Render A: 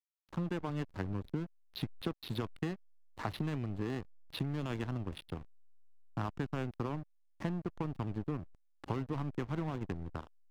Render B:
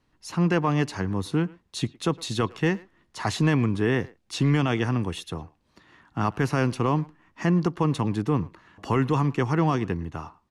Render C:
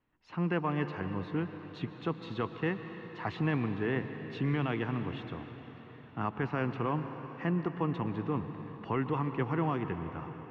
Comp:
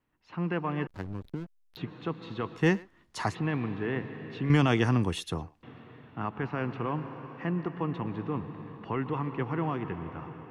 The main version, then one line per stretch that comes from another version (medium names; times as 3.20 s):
C
0.87–1.77 s: from A
2.60–3.28 s: from B, crossfade 0.16 s
4.50–5.63 s: from B